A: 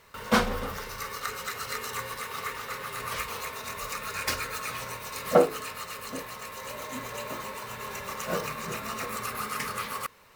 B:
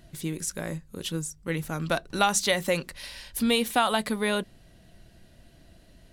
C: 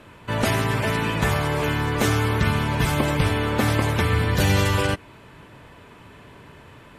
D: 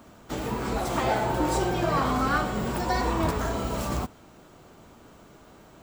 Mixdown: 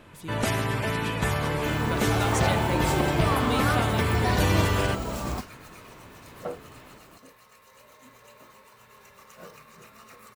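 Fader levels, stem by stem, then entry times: -15.5, -8.5, -4.5, -2.0 dB; 1.10, 0.00, 0.00, 1.35 s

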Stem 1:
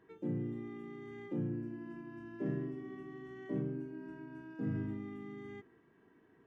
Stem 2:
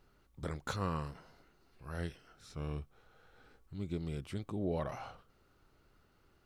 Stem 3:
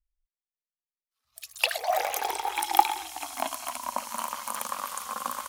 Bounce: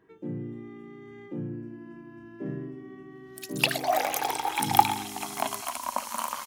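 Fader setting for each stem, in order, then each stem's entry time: +2.0 dB, off, +1.0 dB; 0.00 s, off, 2.00 s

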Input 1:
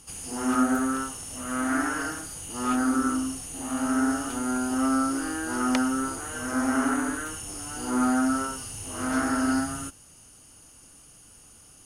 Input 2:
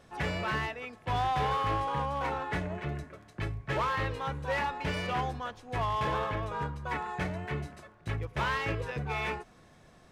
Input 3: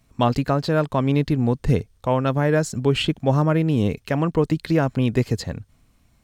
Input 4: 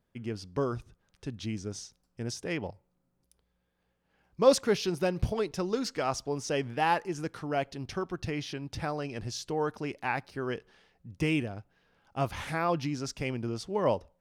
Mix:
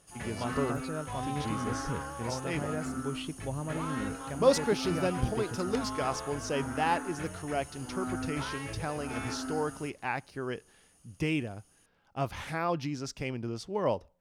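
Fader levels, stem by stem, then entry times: -13.5, -9.0, -17.5, -2.0 dB; 0.00, 0.00, 0.20, 0.00 s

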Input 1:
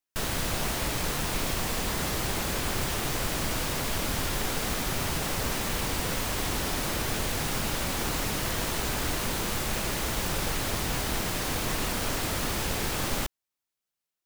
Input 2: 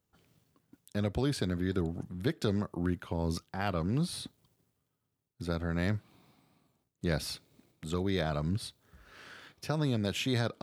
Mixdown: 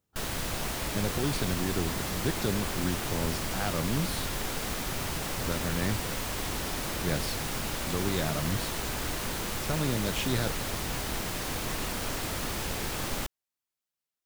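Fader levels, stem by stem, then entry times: -3.5, 0.0 dB; 0.00, 0.00 s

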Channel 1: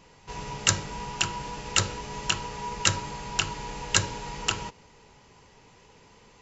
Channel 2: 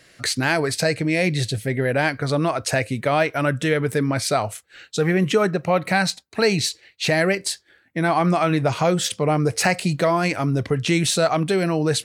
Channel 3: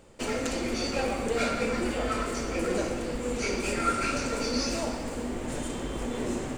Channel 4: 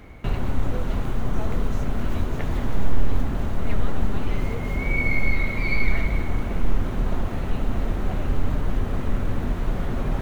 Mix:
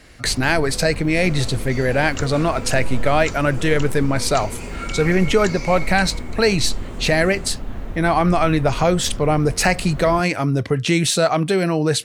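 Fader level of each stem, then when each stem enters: -10.5, +2.0, -6.5, -5.5 dB; 1.50, 0.00, 0.95, 0.00 s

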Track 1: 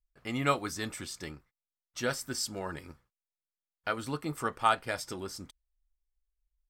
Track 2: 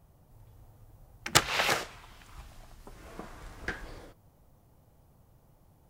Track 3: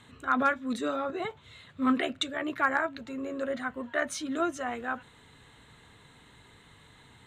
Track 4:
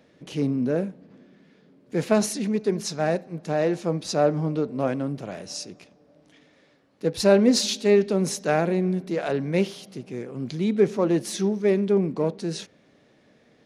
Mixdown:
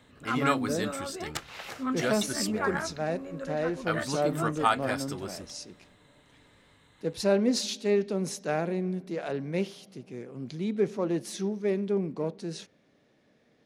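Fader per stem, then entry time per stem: +1.0, -14.0, -5.5, -7.0 dB; 0.00, 0.00, 0.00, 0.00 s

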